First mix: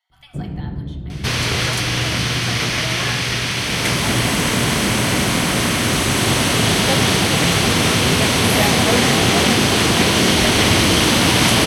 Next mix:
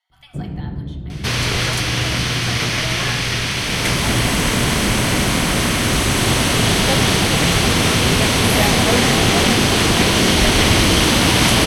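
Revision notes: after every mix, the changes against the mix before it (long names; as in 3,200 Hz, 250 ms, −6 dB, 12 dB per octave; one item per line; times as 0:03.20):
second sound: remove high-pass filter 80 Hz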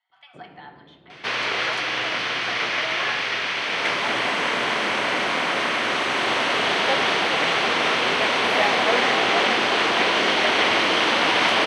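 first sound: send −8.5 dB
master: add band-pass filter 530–2,800 Hz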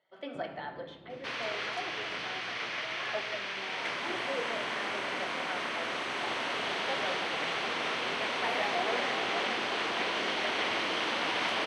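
speech: remove Chebyshev high-pass with heavy ripple 710 Hz, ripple 3 dB
second sound −12.0 dB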